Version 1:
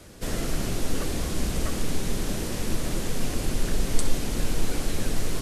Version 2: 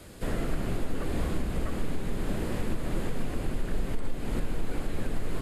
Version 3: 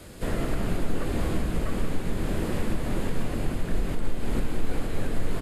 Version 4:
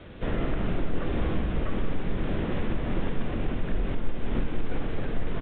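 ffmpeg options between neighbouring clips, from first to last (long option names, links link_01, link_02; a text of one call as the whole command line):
ffmpeg -i in.wav -filter_complex "[0:a]acrossover=split=2500[link_01][link_02];[link_02]acompressor=threshold=-47dB:ratio=4:attack=1:release=60[link_03];[link_01][link_03]amix=inputs=2:normalize=0,equalizer=frequency=5800:width=5:gain=-9.5,alimiter=limit=-18.5dB:level=0:latency=1:release=275" out.wav
ffmpeg -i in.wav -filter_complex "[0:a]asplit=2[link_01][link_02];[link_02]adelay=22,volume=-11.5dB[link_03];[link_01][link_03]amix=inputs=2:normalize=0,aecho=1:1:181:0.376,volume=2.5dB" out.wav
ffmpeg -i in.wav -filter_complex "[0:a]asplit=2[link_01][link_02];[link_02]asoftclip=type=tanh:threshold=-21.5dB,volume=-6dB[link_03];[link_01][link_03]amix=inputs=2:normalize=0,asplit=2[link_04][link_05];[link_05]adelay=48,volume=-11dB[link_06];[link_04][link_06]amix=inputs=2:normalize=0,aresample=8000,aresample=44100,volume=-3.5dB" out.wav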